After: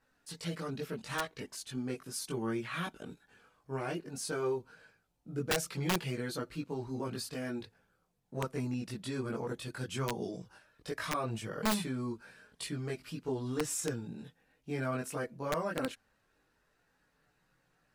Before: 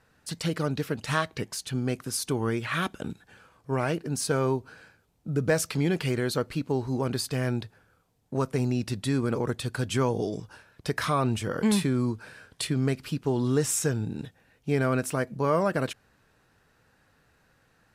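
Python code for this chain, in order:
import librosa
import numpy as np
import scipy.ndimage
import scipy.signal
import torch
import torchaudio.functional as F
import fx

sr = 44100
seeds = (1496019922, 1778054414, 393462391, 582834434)

y = fx.chorus_voices(x, sr, voices=4, hz=0.15, base_ms=20, depth_ms=3.6, mix_pct=55)
y = fx.peak_eq(y, sr, hz=80.0, db=-5.5, octaves=1.5)
y = (np.mod(10.0 ** (18.0 / 20.0) * y + 1.0, 2.0) - 1.0) / 10.0 ** (18.0 / 20.0)
y = y * 10.0 ** (-5.5 / 20.0)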